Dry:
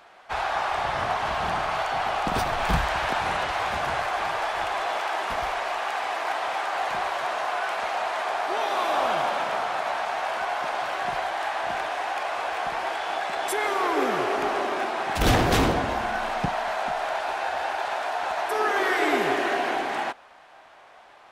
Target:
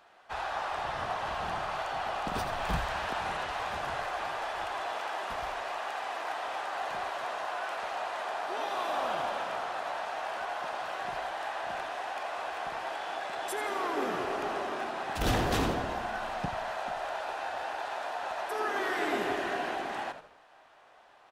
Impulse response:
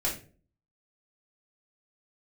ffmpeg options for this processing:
-filter_complex "[0:a]bandreject=f=2.2k:w=16,asplit=2[a][b];[b]asplit=4[c][d][e][f];[c]adelay=84,afreqshift=-88,volume=-11dB[g];[d]adelay=168,afreqshift=-176,volume=-20.4dB[h];[e]adelay=252,afreqshift=-264,volume=-29.7dB[i];[f]adelay=336,afreqshift=-352,volume=-39.1dB[j];[g][h][i][j]amix=inputs=4:normalize=0[k];[a][k]amix=inputs=2:normalize=0,volume=-8dB"

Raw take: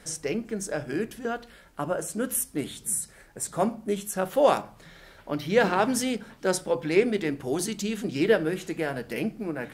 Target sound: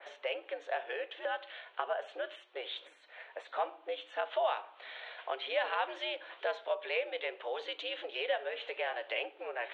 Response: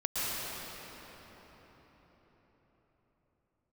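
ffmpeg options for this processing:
-af "acompressor=threshold=-37dB:ratio=3,highpass=f=420:t=q:w=0.5412,highpass=f=420:t=q:w=1.307,lowpass=f=3.5k:t=q:w=0.5176,lowpass=f=3.5k:t=q:w=0.7071,lowpass=f=3.5k:t=q:w=1.932,afreqshift=99,aexciter=amount=1.1:drive=2.9:freq=2.7k,adynamicequalizer=threshold=0.00178:dfrequency=2500:dqfactor=0.7:tfrequency=2500:tqfactor=0.7:attack=5:release=100:ratio=0.375:range=2.5:mode=boostabove:tftype=highshelf,volume=4dB"

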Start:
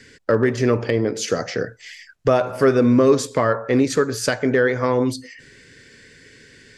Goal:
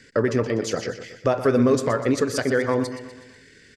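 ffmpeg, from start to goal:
-af "atempo=1.8,aecho=1:1:123|246|369|492|615:0.266|0.136|0.0692|0.0353|0.018,volume=-3dB"

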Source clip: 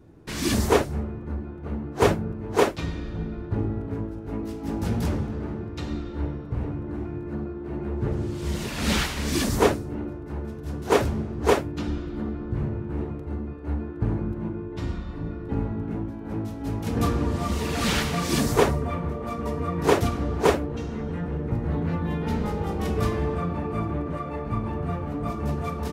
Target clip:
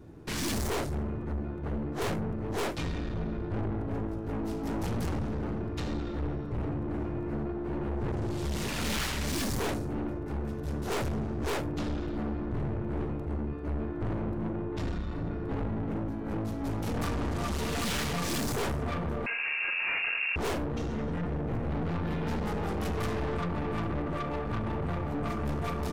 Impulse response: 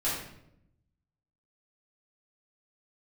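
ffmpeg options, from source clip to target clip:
-filter_complex "[0:a]aeval=exprs='(tanh(44.7*val(0)+0.4)-tanh(0.4))/44.7':c=same,asettb=1/sr,asplit=3[a][b][c];[a]atrim=end=19.264[d];[b]atrim=start=19.26:end=20.36,asetpts=PTS-STARTPTS,afade=t=in:d=0.004:c=qsin,afade=t=out:st=1.096:d=0.004:c=qsin,lowpass=f=2.4k:t=q:w=0.5098,lowpass=f=2.4k:t=q:w=0.6013,lowpass=f=2.4k:t=q:w=0.9,lowpass=f=2.4k:t=q:w=2.563,afreqshift=-2800[e];[c]atrim=start=20.356[f];[d][e]acrossfade=d=0.004:c1=hsin:c2=qsin[g];[g][f]acrossfade=d=0.004:c1=qsin:c2=hsin,volume=3.5dB"

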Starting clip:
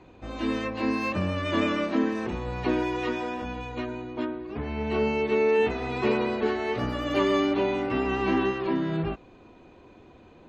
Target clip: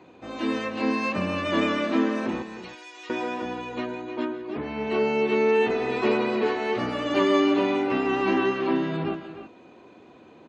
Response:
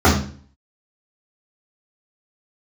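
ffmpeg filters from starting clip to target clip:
-filter_complex "[0:a]aresample=22050,aresample=44100,highpass=170,asettb=1/sr,asplit=3[a][b][c];[a]atrim=end=2.424[d];[b]atrim=start=2.42:end=3.1,asetpts=PTS-STARTPTS,afade=t=in:d=0.004:c=qsin,afade=t=out:st=0.676:d=0.004:c=qsin,aderivative[e];[c]atrim=start=3.096[f];[d][e]acrossfade=d=0.004:c1=hsin:c2=qsin[g];[g][f]acrossfade=d=0.004:c1=qsin:c2=hsin,asplit=2[h][i];[i]aecho=0:1:141|172|306|328:0.126|0.141|0.266|0.15[j];[h][j]amix=inputs=2:normalize=0,volume=2dB"

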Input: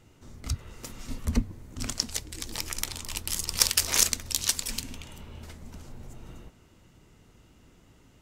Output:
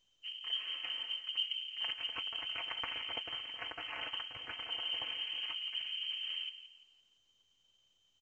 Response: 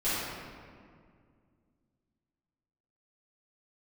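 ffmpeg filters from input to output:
-filter_complex "[0:a]highpass=f=50:p=1,agate=range=-16dB:threshold=-51dB:ratio=16:detection=peak,anlmdn=0.00251,highshelf=f=2.5k:g=-12,aecho=1:1:5:0.93,areverse,acompressor=threshold=-41dB:ratio=5,areverse,aeval=exprs='val(0)*sin(2*PI*110*n/s)':c=same,asplit=2[a][b];[b]adelay=170,lowpass=f=1.4k:p=1,volume=-12dB,asplit=2[c][d];[d]adelay=170,lowpass=f=1.4k:p=1,volume=0.38,asplit=2[e][f];[f]adelay=170,lowpass=f=1.4k:p=1,volume=0.38,asplit=2[g][h];[h]adelay=170,lowpass=f=1.4k:p=1,volume=0.38[i];[c][e][g][i]amix=inputs=4:normalize=0[j];[a][j]amix=inputs=2:normalize=0,lowpass=f=2.7k:t=q:w=0.5098,lowpass=f=2.7k:t=q:w=0.6013,lowpass=f=2.7k:t=q:w=0.9,lowpass=f=2.7k:t=q:w=2.563,afreqshift=-3200,volume=8.5dB" -ar 16000 -c:a pcm_mulaw

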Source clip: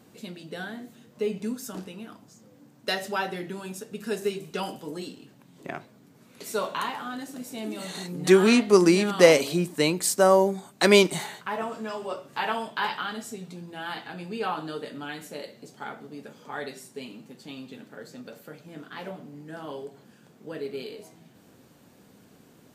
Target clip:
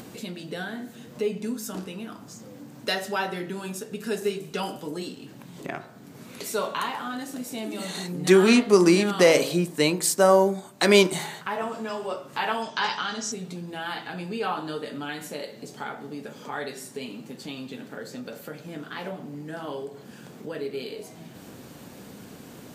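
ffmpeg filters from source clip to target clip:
-filter_complex "[0:a]bandreject=f=53.51:t=h:w=4,bandreject=f=107.02:t=h:w=4,bandreject=f=160.53:t=h:w=4,bandreject=f=214.04:t=h:w=4,bandreject=f=267.55:t=h:w=4,bandreject=f=321.06:t=h:w=4,bandreject=f=374.57:t=h:w=4,bandreject=f=428.08:t=h:w=4,bandreject=f=481.59:t=h:w=4,bandreject=f=535.1:t=h:w=4,bandreject=f=588.61:t=h:w=4,bandreject=f=642.12:t=h:w=4,bandreject=f=695.63:t=h:w=4,bandreject=f=749.14:t=h:w=4,bandreject=f=802.65:t=h:w=4,bandreject=f=856.16:t=h:w=4,bandreject=f=909.67:t=h:w=4,bandreject=f=963.18:t=h:w=4,bandreject=f=1.01669k:t=h:w=4,bandreject=f=1.0702k:t=h:w=4,bandreject=f=1.12371k:t=h:w=4,bandreject=f=1.17722k:t=h:w=4,bandreject=f=1.23073k:t=h:w=4,bandreject=f=1.28424k:t=h:w=4,bandreject=f=1.33775k:t=h:w=4,bandreject=f=1.39126k:t=h:w=4,bandreject=f=1.44477k:t=h:w=4,bandreject=f=1.49828k:t=h:w=4,bandreject=f=1.55179k:t=h:w=4,bandreject=f=1.6053k:t=h:w=4,bandreject=f=1.65881k:t=h:w=4,bandreject=f=1.71232k:t=h:w=4,bandreject=f=1.76583k:t=h:w=4,bandreject=f=1.81934k:t=h:w=4,bandreject=f=1.87285k:t=h:w=4,asplit=2[a][b];[b]acompressor=mode=upward:threshold=-27dB:ratio=2.5,volume=0dB[c];[a][c]amix=inputs=2:normalize=0,asettb=1/sr,asplit=3[d][e][f];[d]atrim=end=12.624[g];[e]atrim=start=12.62:end=13.32,asetpts=PTS-STARTPTS,afade=t=in:d=0.004:c=qsin,afade=t=out:st=0.696:d=0.004:c=qsin,lowpass=f=6k:t=q:w=6.9[h];[f]atrim=start=13.316[i];[g][h]acrossfade=d=0.004:c1=hsin:c2=qsin[j];[j][i]acrossfade=d=0.004:c1=qsin:c2=hsin,alimiter=level_in=0.5dB:limit=-1dB:release=50:level=0:latency=1,volume=-5dB"

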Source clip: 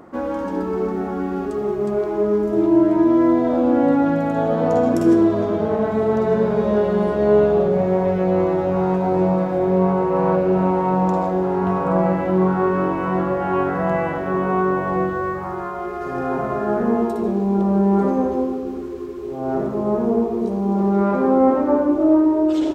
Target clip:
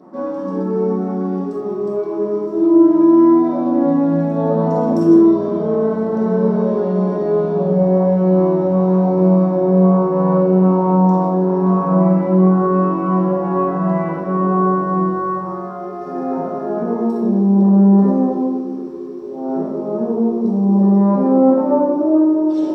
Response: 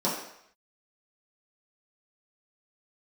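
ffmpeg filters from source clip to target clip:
-filter_complex "[0:a]highpass=84[a];[1:a]atrim=start_sample=2205,afade=t=out:st=0.14:d=0.01,atrim=end_sample=6615[b];[a][b]afir=irnorm=-1:irlink=0,volume=-13.5dB"

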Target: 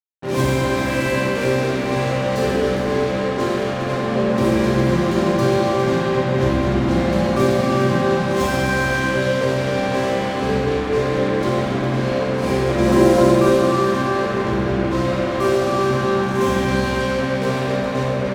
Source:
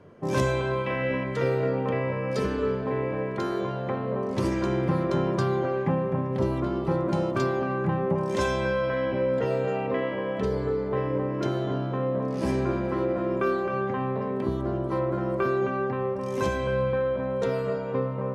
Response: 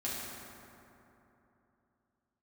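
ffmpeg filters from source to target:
-filter_complex "[0:a]asettb=1/sr,asplit=3[a][b][c];[a]atrim=end=6.214[d];[b]atrim=start=6.21:end=6.85,asetpts=PTS-STARTPTS,afade=t=in:d=0.004:c=qsin,afade=t=out:st=0.636:d=0.004:c=qsin,lowshelf=f=66:g=9.5[e];[c]atrim=start=6.846[f];[d][e]acrossfade=d=0.004:c1=hsin:c2=qsin[g];[g][f]acrossfade=d=0.004:c1=qsin:c2=hsin,asettb=1/sr,asplit=3[h][i][j];[h]atrim=end=12.784[k];[i]atrim=start=12.78:end=13.31,asetpts=PTS-STARTPTS,afade=t=in:d=0.004:c=qsin,afade=t=out:st=0.526:d=0.004:c=qsin,acontrast=80[l];[j]atrim=start=13.306[m];[k][l]acrossfade=d=0.004:c1=hsin:c2=qsin[n];[n][m]acrossfade=d=0.004:c1=qsin:c2=hsin,acrusher=bits=4:mix=0:aa=0.5,aecho=1:1:407:0.355[o];[1:a]atrim=start_sample=2205[p];[o][p]afir=irnorm=-1:irlink=0,volume=3dB"

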